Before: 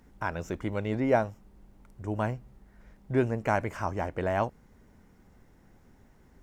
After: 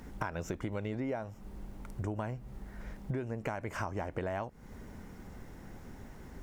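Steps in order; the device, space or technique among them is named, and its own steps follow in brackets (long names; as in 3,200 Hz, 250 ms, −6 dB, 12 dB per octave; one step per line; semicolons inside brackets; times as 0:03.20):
serial compression, leveller first (downward compressor 3 to 1, threshold −30 dBFS, peak gain reduction 9 dB; downward compressor 6 to 1, threshold −44 dBFS, peak gain reduction 16.5 dB)
level +10 dB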